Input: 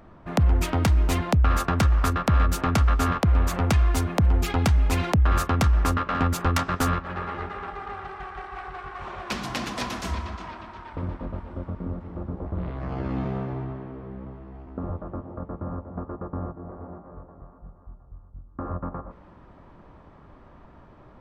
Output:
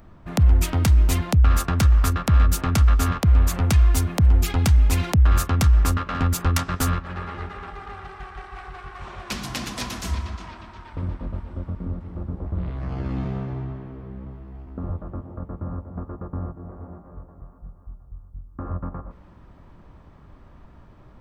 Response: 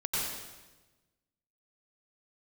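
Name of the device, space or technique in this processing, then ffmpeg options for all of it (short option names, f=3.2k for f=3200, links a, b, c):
smiley-face EQ: -af "lowshelf=f=150:g=5.5,equalizer=f=650:t=o:w=2.9:g=-4,highshelf=f=5.8k:g=8.5"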